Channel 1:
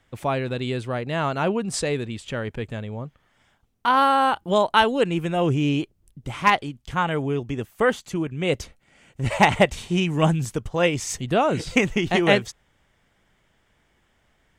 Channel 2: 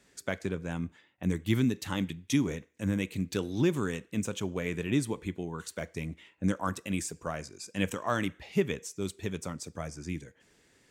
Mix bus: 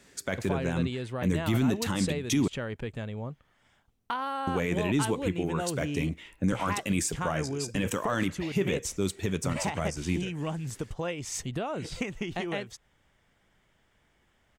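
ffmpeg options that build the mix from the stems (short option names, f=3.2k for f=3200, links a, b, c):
-filter_complex "[0:a]acompressor=threshold=-26dB:ratio=10,adelay=250,volume=-9.5dB[a];[1:a]volume=0.5dB,asplit=3[b][c][d];[b]atrim=end=2.48,asetpts=PTS-STARTPTS,afade=t=out:st=2.476:d=0.004:c=hsin[e];[c]atrim=start=2.48:end=4.47,asetpts=PTS-STARTPTS,volume=0[f];[d]atrim=start=4.47,asetpts=PTS-STARTPTS,afade=t=in:d=0.004:c=hsin[g];[e][f][g]concat=n=3:v=0:a=1[h];[a][h]amix=inputs=2:normalize=0,acontrast=53,alimiter=limit=-17.5dB:level=0:latency=1:release=16"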